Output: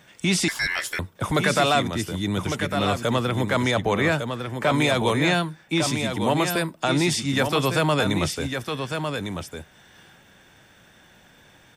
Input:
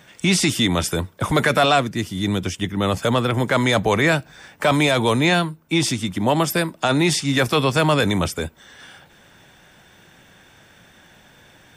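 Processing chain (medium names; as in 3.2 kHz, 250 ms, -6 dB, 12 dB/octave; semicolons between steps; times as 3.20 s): 3.71–4.78 s: treble shelf 4.7 kHz -6.5 dB; delay 1154 ms -6.5 dB; 0.48–0.99 s: ring modulator 1.9 kHz; trim -4 dB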